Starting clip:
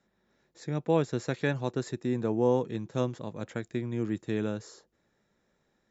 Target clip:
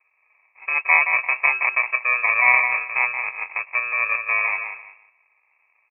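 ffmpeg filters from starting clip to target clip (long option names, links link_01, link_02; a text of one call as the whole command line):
ffmpeg -i in.wav -filter_complex "[0:a]asplit=2[link_01][link_02];[link_02]aecho=0:1:172|344|516:0.447|0.0983|0.0216[link_03];[link_01][link_03]amix=inputs=2:normalize=0,acrusher=samples=36:mix=1:aa=0.000001,equalizer=frequency=160:width_type=o:width=0.67:gain=6,equalizer=frequency=400:width_type=o:width=0.67:gain=10,equalizer=frequency=1600:width_type=o:width=0.67:gain=12,lowpass=frequency=2300:width_type=q:width=0.5098,lowpass=frequency=2300:width_type=q:width=0.6013,lowpass=frequency=2300:width_type=q:width=0.9,lowpass=frequency=2300:width_type=q:width=2.563,afreqshift=-2700,volume=2.5dB" out.wav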